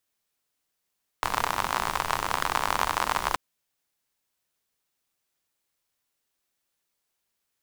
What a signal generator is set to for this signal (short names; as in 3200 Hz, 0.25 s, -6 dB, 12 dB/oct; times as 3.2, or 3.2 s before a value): rain from filtered ticks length 2.13 s, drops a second 62, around 1000 Hz, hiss -9.5 dB